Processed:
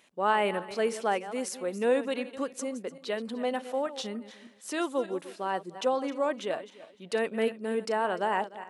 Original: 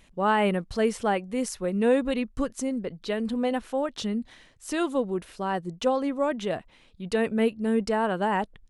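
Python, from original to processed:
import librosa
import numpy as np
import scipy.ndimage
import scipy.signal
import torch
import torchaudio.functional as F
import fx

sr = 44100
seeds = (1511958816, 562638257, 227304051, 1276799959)

y = fx.reverse_delay_fb(x, sr, ms=149, feedback_pct=44, wet_db=-13.0)
y = scipy.signal.sosfilt(scipy.signal.butter(2, 330.0, 'highpass', fs=sr, output='sos'), y)
y = y * librosa.db_to_amplitude(-2.0)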